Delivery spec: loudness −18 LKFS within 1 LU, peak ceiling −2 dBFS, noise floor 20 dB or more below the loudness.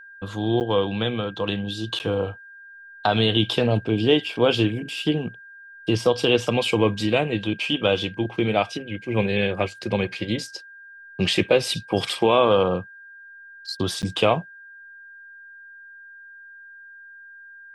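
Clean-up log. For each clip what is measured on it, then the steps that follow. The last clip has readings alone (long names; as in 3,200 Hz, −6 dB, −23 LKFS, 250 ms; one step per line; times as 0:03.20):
number of dropouts 3; longest dropout 9.2 ms; interfering tone 1,600 Hz; level of the tone −42 dBFS; integrated loudness −23.0 LKFS; sample peak −5.0 dBFS; target loudness −18.0 LKFS
→ repair the gap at 0:00.60/0:01.99/0:14.02, 9.2 ms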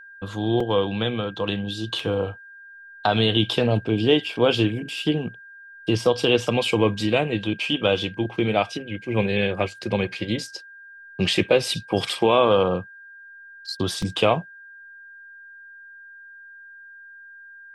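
number of dropouts 0; interfering tone 1,600 Hz; level of the tone −42 dBFS
→ notch filter 1,600 Hz, Q 30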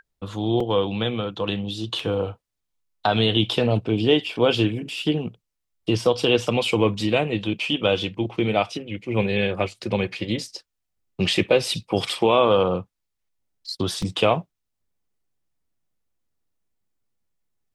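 interfering tone none found; integrated loudness −23.0 LKFS; sample peak −5.0 dBFS; target loudness −18.0 LKFS
→ level +5 dB
brickwall limiter −2 dBFS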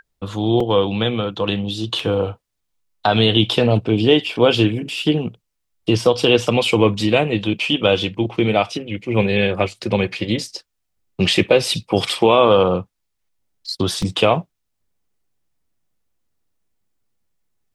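integrated loudness −18.0 LKFS; sample peak −2.0 dBFS; background noise floor −75 dBFS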